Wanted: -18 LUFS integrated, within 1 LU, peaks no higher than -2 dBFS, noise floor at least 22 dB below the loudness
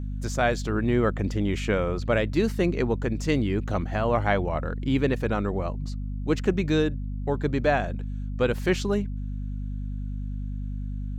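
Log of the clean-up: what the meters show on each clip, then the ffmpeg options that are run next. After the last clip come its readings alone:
hum 50 Hz; harmonics up to 250 Hz; hum level -29 dBFS; loudness -27.0 LUFS; peak -9.5 dBFS; loudness target -18.0 LUFS
-> -af "bandreject=f=50:t=h:w=6,bandreject=f=100:t=h:w=6,bandreject=f=150:t=h:w=6,bandreject=f=200:t=h:w=6,bandreject=f=250:t=h:w=6"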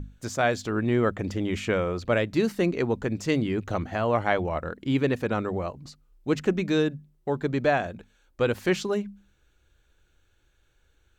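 hum none; loudness -27.0 LUFS; peak -9.0 dBFS; loudness target -18.0 LUFS
-> -af "volume=9dB,alimiter=limit=-2dB:level=0:latency=1"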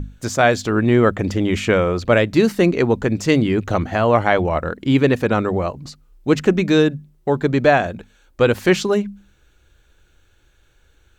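loudness -18.0 LUFS; peak -2.0 dBFS; noise floor -57 dBFS

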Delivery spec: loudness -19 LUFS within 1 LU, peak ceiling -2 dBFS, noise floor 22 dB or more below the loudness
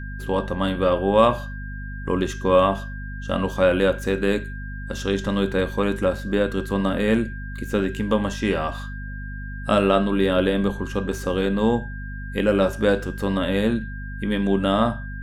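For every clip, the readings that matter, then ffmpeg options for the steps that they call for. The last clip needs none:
hum 50 Hz; harmonics up to 250 Hz; hum level -30 dBFS; steady tone 1600 Hz; tone level -38 dBFS; loudness -22.5 LUFS; peak -3.5 dBFS; loudness target -19.0 LUFS
-> -af "bandreject=f=50:t=h:w=4,bandreject=f=100:t=h:w=4,bandreject=f=150:t=h:w=4,bandreject=f=200:t=h:w=4,bandreject=f=250:t=h:w=4"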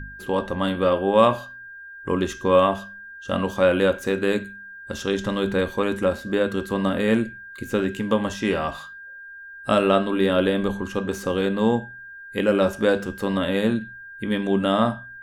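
hum none; steady tone 1600 Hz; tone level -38 dBFS
-> -af "bandreject=f=1.6k:w=30"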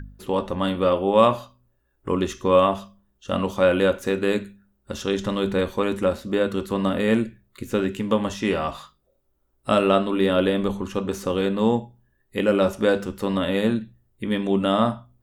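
steady tone none; loudness -23.0 LUFS; peak -3.5 dBFS; loudness target -19.0 LUFS
-> -af "volume=4dB,alimiter=limit=-2dB:level=0:latency=1"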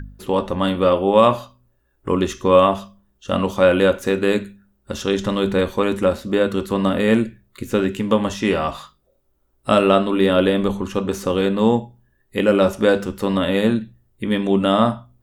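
loudness -19.0 LUFS; peak -2.0 dBFS; noise floor -65 dBFS

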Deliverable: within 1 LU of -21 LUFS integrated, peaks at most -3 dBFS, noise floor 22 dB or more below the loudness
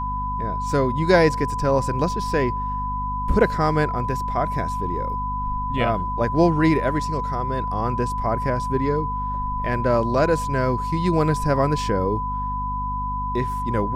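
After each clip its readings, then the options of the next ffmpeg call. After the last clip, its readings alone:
hum 50 Hz; harmonics up to 250 Hz; hum level -27 dBFS; steady tone 1000 Hz; tone level -25 dBFS; loudness -22.5 LUFS; peak -3.5 dBFS; loudness target -21.0 LUFS
-> -af "bandreject=f=50:t=h:w=6,bandreject=f=100:t=h:w=6,bandreject=f=150:t=h:w=6,bandreject=f=200:t=h:w=6,bandreject=f=250:t=h:w=6"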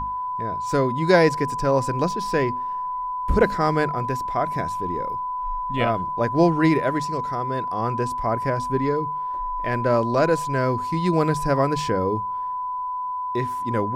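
hum none; steady tone 1000 Hz; tone level -25 dBFS
-> -af "bandreject=f=1k:w=30"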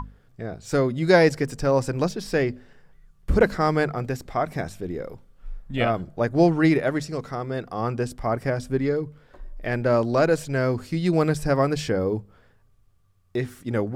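steady tone none; loudness -24.0 LUFS; peak -4.5 dBFS; loudness target -21.0 LUFS
-> -af "volume=3dB,alimiter=limit=-3dB:level=0:latency=1"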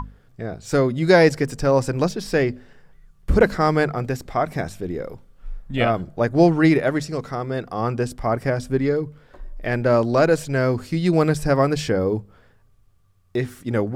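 loudness -21.0 LUFS; peak -3.0 dBFS; noise floor -56 dBFS

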